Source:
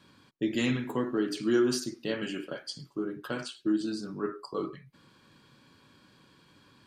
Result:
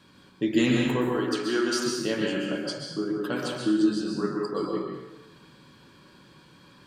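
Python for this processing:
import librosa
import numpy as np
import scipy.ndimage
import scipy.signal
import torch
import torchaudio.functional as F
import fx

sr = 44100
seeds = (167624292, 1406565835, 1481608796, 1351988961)

y = fx.weighting(x, sr, curve='A', at=(1.09, 1.82))
y = fx.rev_plate(y, sr, seeds[0], rt60_s=1.1, hf_ratio=0.7, predelay_ms=110, drr_db=0.0)
y = y * 10.0 ** (3.0 / 20.0)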